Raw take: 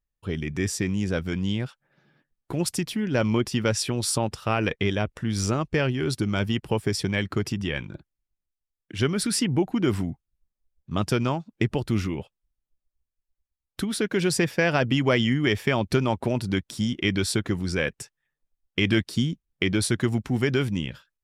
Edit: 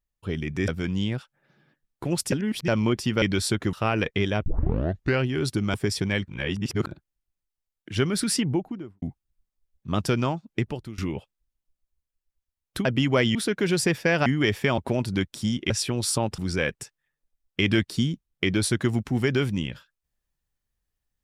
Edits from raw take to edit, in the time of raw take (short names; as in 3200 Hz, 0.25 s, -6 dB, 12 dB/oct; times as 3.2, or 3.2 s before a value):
0.68–1.16 cut
2.8–3.16 reverse
3.7–4.38 swap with 17.06–17.57
5.11 tape start 0.76 s
6.39–6.77 cut
7.31–7.9 reverse
9.36–10.05 studio fade out
11.5–12.01 fade out, to -23.5 dB
14.79–15.29 move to 13.88
15.81–16.14 cut